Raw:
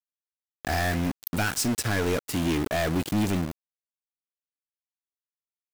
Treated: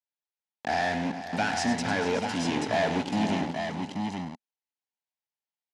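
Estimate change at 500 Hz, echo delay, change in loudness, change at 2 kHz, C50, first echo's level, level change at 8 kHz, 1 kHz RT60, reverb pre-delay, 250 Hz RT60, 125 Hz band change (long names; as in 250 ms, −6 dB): +0.5 dB, 100 ms, −2.0 dB, 0.0 dB, no reverb audible, −9.5 dB, −7.0 dB, no reverb audible, no reverb audible, no reverb audible, −6.0 dB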